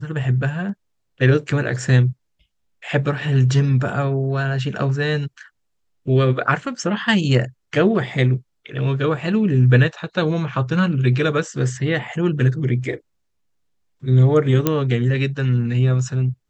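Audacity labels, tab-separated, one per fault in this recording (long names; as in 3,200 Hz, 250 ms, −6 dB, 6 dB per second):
14.670000	14.670000	click −3 dBFS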